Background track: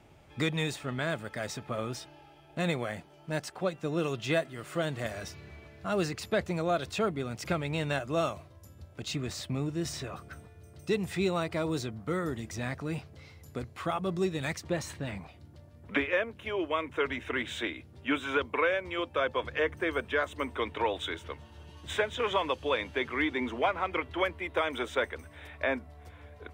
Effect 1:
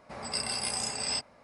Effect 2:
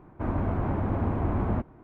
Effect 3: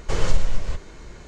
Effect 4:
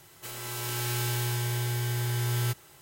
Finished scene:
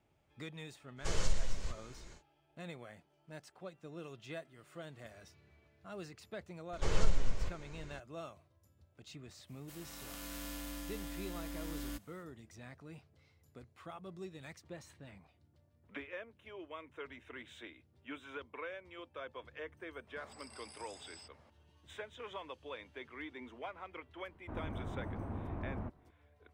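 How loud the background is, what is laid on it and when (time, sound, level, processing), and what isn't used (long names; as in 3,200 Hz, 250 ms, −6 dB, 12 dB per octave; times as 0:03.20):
background track −17 dB
0:00.96: mix in 3 −13 dB, fades 0.10 s + high-shelf EQ 3,600 Hz +10 dB
0:06.73: mix in 3 −9.5 dB
0:09.45: mix in 4 −11.5 dB, fades 0.05 s + ring modulation 170 Hz
0:20.07: mix in 1 −8 dB + downward compressor, threshold −45 dBFS
0:24.28: mix in 2 −14.5 dB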